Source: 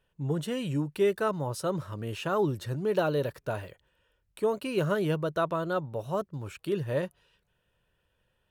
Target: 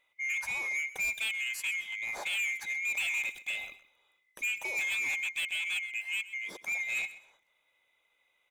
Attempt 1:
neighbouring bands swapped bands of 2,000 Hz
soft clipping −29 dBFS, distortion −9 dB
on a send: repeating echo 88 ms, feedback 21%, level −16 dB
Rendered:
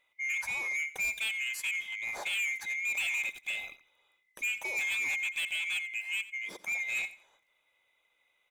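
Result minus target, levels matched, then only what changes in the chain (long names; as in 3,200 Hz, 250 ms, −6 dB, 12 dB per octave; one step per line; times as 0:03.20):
echo 39 ms early
change: repeating echo 127 ms, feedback 21%, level −16 dB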